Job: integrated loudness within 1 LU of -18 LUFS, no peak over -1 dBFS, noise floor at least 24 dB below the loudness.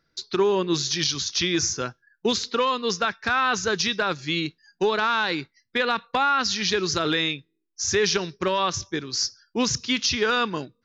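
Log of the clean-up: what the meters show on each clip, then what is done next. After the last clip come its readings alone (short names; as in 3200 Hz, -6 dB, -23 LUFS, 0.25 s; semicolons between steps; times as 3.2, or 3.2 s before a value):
loudness -24.0 LUFS; peak -12.5 dBFS; loudness target -18.0 LUFS
-> gain +6 dB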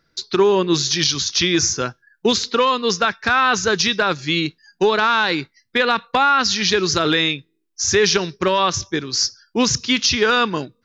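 loudness -18.0 LUFS; peak -6.5 dBFS; noise floor -68 dBFS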